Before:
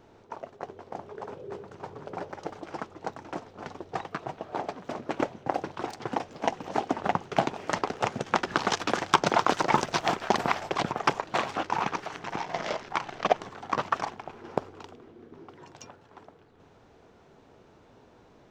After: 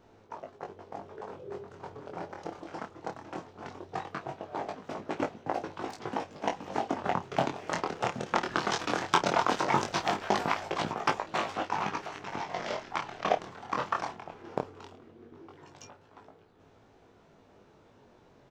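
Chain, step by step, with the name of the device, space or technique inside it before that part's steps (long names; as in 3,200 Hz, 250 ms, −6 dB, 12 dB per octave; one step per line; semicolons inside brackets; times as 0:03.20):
double-tracked vocal (double-tracking delay 30 ms −12.5 dB; chorus effect 0.18 Hz, delay 18.5 ms, depth 5.8 ms)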